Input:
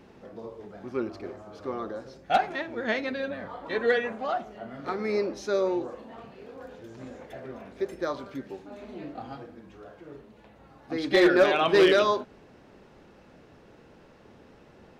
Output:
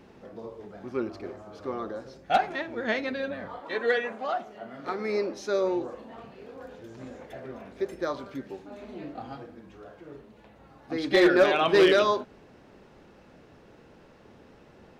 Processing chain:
0:03.59–0:05.63: high-pass filter 380 Hz → 150 Hz 6 dB per octave

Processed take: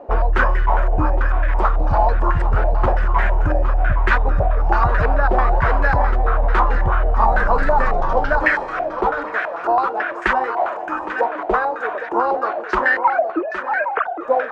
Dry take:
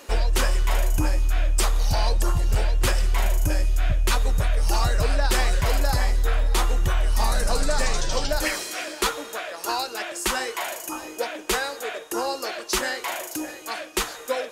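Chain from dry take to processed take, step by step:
0:12.98–0:14.21: three sine waves on the formant tracks
feedback echo with a high-pass in the loop 813 ms, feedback 27%, high-pass 210 Hz, level −9 dB
low-pass on a step sequencer 9.1 Hz 710–1,700 Hz
level +4 dB

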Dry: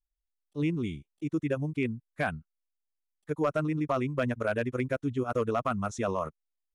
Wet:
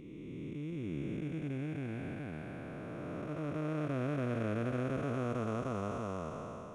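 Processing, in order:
spectrum smeared in time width 1,290 ms

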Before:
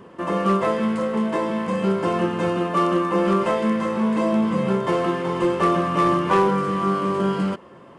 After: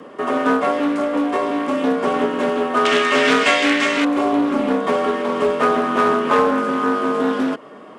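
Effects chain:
0:02.85–0:04.05: flat-topped bell 3,600 Hz +16 dB 2.7 octaves
in parallel at +1.5 dB: downward compressor, threshold −27 dBFS, peak gain reduction 13 dB
on the sum: frequency shifter +70 Hz
harmonic generator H 7 −36 dB, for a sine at −2 dBFS
highs frequency-modulated by the lows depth 0.2 ms

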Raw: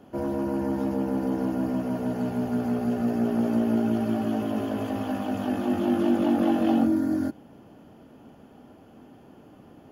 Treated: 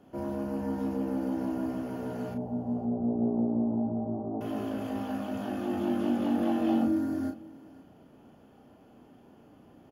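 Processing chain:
0:02.34–0:04.41: Butterworth low-pass 920 Hz 36 dB per octave
double-tracking delay 34 ms −5 dB
single-tap delay 511 ms −21 dB
level −6.5 dB

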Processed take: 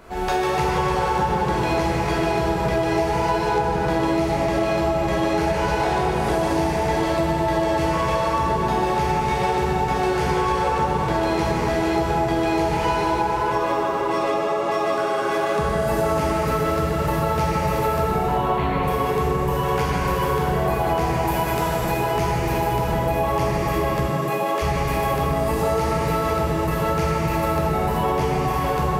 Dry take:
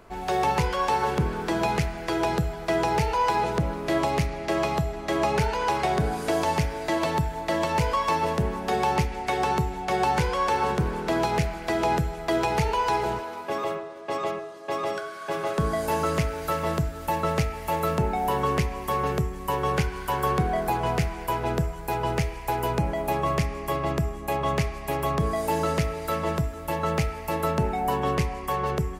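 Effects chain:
0:18.25–0:18.83: Chebyshev low-pass filter 4,300 Hz, order 8
0:21.10–0:21.76: spectral tilt +2 dB per octave
tape delay 129 ms, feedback 81%, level −4 dB, low-pass 1,800 Hz
convolution reverb RT60 2.9 s, pre-delay 6 ms, DRR −8 dB
downward compressor 5 to 1, threshold −23 dBFS, peak gain reduction 13.5 dB
0:24.06–0:24.61: high-pass filter 92 Hz → 270 Hz 24 dB per octave
level +4 dB

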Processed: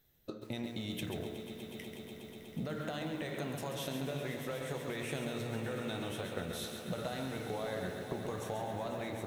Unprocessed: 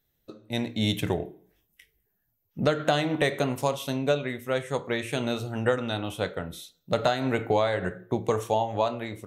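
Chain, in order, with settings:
brickwall limiter −21 dBFS, peak gain reduction 8.5 dB
downward compressor 12 to 1, threshold −40 dBFS, peak gain reduction 15.5 dB
echo that builds up and dies away 122 ms, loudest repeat 5, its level −14 dB
on a send at −18 dB: convolution reverb, pre-delay 3 ms
on the sum: feedback echo at a low word length 136 ms, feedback 35%, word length 10 bits, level −6 dB
level +3 dB

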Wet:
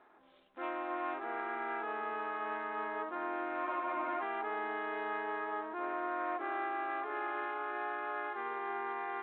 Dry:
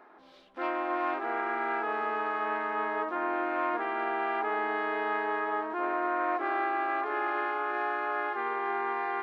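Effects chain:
frozen spectrum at 0:03.66, 0.55 s
level −7 dB
G.726 40 kbit/s 8,000 Hz

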